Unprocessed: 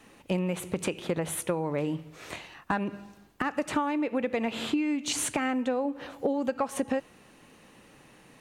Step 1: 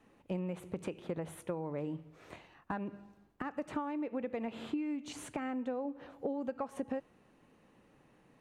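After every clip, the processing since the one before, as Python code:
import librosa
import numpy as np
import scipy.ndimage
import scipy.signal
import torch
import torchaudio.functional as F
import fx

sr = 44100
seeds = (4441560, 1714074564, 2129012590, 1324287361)

y = fx.high_shelf(x, sr, hz=2100.0, db=-12.0)
y = y * librosa.db_to_amplitude(-8.0)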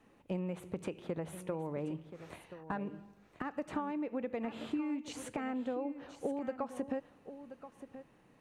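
y = x + 10.0 ** (-12.5 / 20.0) * np.pad(x, (int(1029 * sr / 1000.0), 0))[:len(x)]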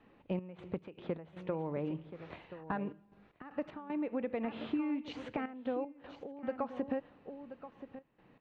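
y = scipy.signal.sosfilt(scipy.signal.butter(4, 3900.0, 'lowpass', fs=sr, output='sos'), x)
y = fx.step_gate(y, sr, bpm=77, pattern='xx.x.x.xxxxxx', floor_db=-12.0, edge_ms=4.5)
y = y * librosa.db_to_amplitude(1.5)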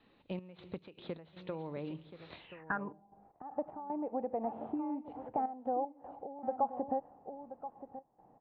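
y = fx.filter_sweep_lowpass(x, sr, from_hz=4000.0, to_hz=790.0, start_s=2.39, end_s=2.95, q=6.8)
y = y * librosa.db_to_amplitude(-4.5)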